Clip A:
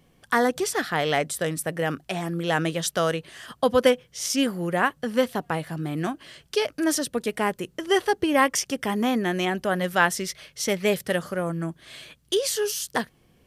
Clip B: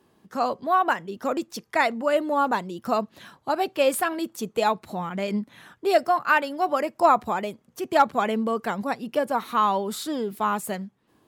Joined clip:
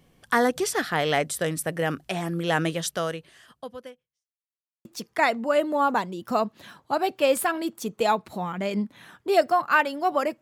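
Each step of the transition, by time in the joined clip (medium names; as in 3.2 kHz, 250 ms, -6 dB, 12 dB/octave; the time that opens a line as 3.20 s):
clip A
2.66–4.28 s: fade out quadratic
4.28–4.85 s: mute
4.85 s: go over to clip B from 1.42 s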